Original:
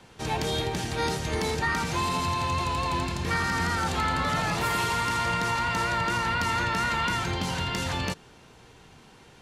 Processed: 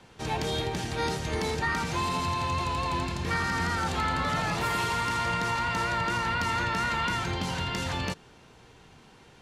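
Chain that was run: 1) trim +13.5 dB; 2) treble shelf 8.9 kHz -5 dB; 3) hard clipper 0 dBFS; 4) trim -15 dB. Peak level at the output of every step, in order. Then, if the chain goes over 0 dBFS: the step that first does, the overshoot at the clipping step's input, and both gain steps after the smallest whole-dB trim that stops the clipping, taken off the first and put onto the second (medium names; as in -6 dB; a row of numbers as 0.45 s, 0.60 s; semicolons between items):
-3.5 dBFS, -3.5 dBFS, -3.5 dBFS, -18.5 dBFS; nothing clips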